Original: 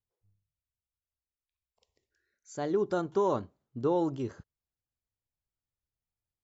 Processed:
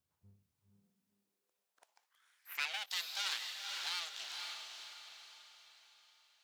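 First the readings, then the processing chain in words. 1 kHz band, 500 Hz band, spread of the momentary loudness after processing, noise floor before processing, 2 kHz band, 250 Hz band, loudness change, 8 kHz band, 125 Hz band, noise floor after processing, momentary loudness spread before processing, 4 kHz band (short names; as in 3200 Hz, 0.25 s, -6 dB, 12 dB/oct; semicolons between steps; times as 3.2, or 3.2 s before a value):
-12.5 dB, -33.5 dB, 17 LU, under -85 dBFS, +9.0 dB, under -40 dB, -8.5 dB, n/a, under -30 dB, under -85 dBFS, 11 LU, +17.5 dB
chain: full-wave rectifier; diffused feedback echo 0.505 s, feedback 44%, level -3.5 dB; high-pass sweep 86 Hz -> 3800 Hz, 0.46–2.92; gain +6.5 dB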